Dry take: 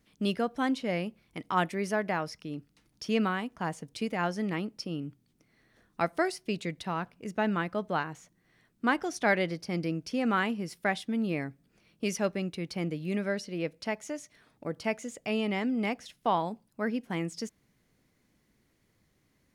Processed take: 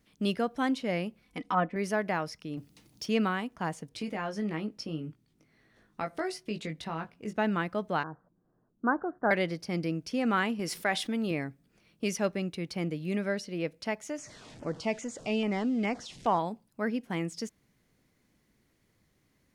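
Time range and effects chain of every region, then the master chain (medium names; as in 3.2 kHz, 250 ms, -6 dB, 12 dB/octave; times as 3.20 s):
1.22–1.76 s: low-pass that closes with the level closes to 1.3 kHz, closed at -26.5 dBFS + comb 4 ms, depth 66%
2.57–3.06 s: companding laws mixed up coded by mu + high-pass 64 Hz + peaking EQ 1.5 kHz -7 dB 0.93 oct
3.89–7.36 s: treble shelf 7 kHz -6 dB + compression 2.5:1, threshold -32 dBFS + doubling 19 ms -5.5 dB
8.03–9.31 s: steep low-pass 1.6 kHz 72 dB/octave + level-controlled noise filter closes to 760 Hz, open at -27.5 dBFS + peaking EQ 70 Hz -5.5 dB 2 oct
10.59–11.31 s: peaking EQ 77 Hz -12.5 dB 2.8 oct + level flattener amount 50%
14.18–16.39 s: jump at every zero crossing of -43.5 dBFS + low-pass 7.9 kHz 24 dB/octave + LFO notch saw down 2.4 Hz 970–4300 Hz
whole clip: none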